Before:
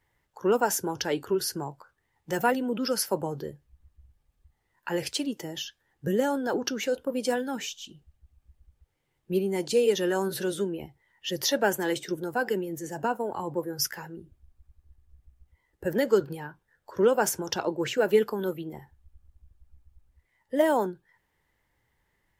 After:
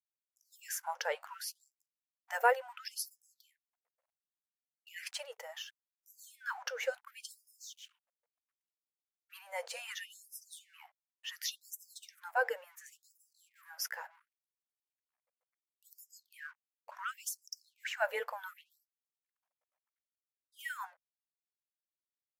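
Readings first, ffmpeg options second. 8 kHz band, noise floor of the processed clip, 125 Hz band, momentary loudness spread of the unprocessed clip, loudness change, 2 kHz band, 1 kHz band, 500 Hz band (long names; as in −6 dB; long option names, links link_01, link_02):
−10.0 dB, below −85 dBFS, below −40 dB, 15 LU, −11.0 dB, −4.5 dB, −8.0 dB, −16.5 dB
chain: -af "aeval=exprs='sgn(val(0))*max(abs(val(0))-0.00211,0)':channel_layout=same,highshelf=frequency=2700:width_type=q:width=1.5:gain=-6.5,afftfilt=real='re*gte(b*sr/1024,440*pow(5000/440,0.5+0.5*sin(2*PI*0.7*pts/sr)))':imag='im*gte(b*sr/1024,440*pow(5000/440,0.5+0.5*sin(2*PI*0.7*pts/sr)))':win_size=1024:overlap=0.75,volume=-2.5dB"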